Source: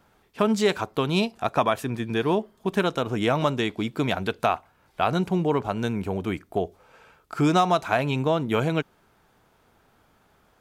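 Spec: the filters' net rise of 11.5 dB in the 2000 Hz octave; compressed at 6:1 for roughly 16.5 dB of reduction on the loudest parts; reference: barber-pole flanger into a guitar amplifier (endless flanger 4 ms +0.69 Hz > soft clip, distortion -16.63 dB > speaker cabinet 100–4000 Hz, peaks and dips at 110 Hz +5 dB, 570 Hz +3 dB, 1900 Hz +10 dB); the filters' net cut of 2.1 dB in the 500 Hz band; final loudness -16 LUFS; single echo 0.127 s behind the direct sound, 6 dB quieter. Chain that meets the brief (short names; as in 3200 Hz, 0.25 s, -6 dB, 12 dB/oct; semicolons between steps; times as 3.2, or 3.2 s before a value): bell 500 Hz -5 dB; bell 2000 Hz +9 dB; compressor 6:1, threshold -35 dBFS; echo 0.127 s -6 dB; endless flanger 4 ms +0.69 Hz; soft clip -32 dBFS; speaker cabinet 100–4000 Hz, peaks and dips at 110 Hz +5 dB, 570 Hz +3 dB, 1900 Hz +10 dB; gain +24 dB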